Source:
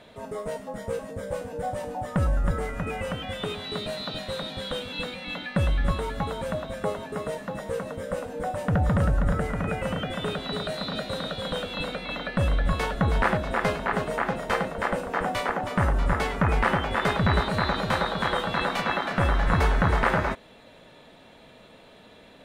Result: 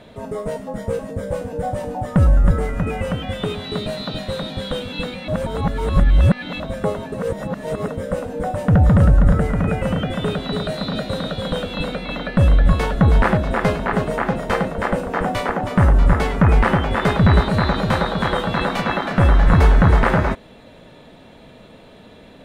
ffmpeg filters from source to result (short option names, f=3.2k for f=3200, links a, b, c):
-filter_complex "[0:a]asplit=5[a][b][c][d][e];[a]atrim=end=5.282[f];[b]atrim=start=5.278:end=6.602,asetpts=PTS-STARTPTS,areverse[g];[c]atrim=start=6.598:end=7.142[h];[d]atrim=start=7.138:end=7.882,asetpts=PTS-STARTPTS,areverse[i];[e]atrim=start=7.878[j];[f][g]acrossfade=d=0.004:c1=hsin:c2=hsin[k];[k][h]acrossfade=d=0.004:c1=hsin:c2=hsin[l];[l][i]acrossfade=d=0.004:c1=hsin:c2=hsin[m];[m][j]acrossfade=d=0.004:c1=hsin:c2=hsin,lowshelf=f=450:g=8,volume=3dB"